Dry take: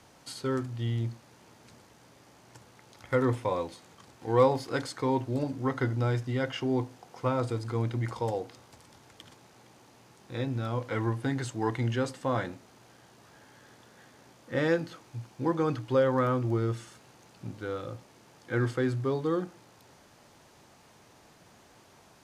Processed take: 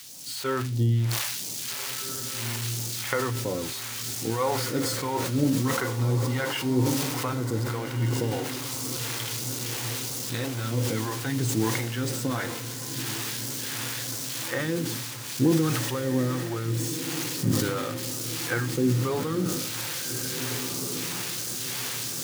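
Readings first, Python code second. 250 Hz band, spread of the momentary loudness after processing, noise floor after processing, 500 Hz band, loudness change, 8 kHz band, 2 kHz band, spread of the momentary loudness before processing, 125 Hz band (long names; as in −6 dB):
+4.5 dB, 6 LU, −35 dBFS, −1.0 dB, +2.5 dB, +21.5 dB, +6.0 dB, 15 LU, +5.0 dB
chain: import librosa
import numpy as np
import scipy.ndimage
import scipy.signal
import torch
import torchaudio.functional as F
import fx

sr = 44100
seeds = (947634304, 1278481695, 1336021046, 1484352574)

y = x + 0.5 * 10.0 ** (-27.5 / 20.0) * np.diff(np.sign(x), prepend=np.sign(x[:1]))
y = fx.recorder_agc(y, sr, target_db=-15.0, rise_db_per_s=16.0, max_gain_db=30)
y = scipy.signal.sosfilt(scipy.signal.butter(2, 120.0, 'highpass', fs=sr, output='sos'), y)
y = fx.high_shelf(y, sr, hz=2800.0, db=-10.5)
y = fx.room_shoebox(y, sr, seeds[0], volume_m3=480.0, walls='furnished', distance_m=0.32)
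y = fx.phaser_stages(y, sr, stages=2, low_hz=200.0, high_hz=1300.0, hz=1.5, feedback_pct=50)
y = fx.echo_diffused(y, sr, ms=1652, feedback_pct=58, wet_db=-8.5)
y = fx.dynamic_eq(y, sr, hz=310.0, q=1.0, threshold_db=-43.0, ratio=4.0, max_db=5)
y = fx.sustainer(y, sr, db_per_s=29.0)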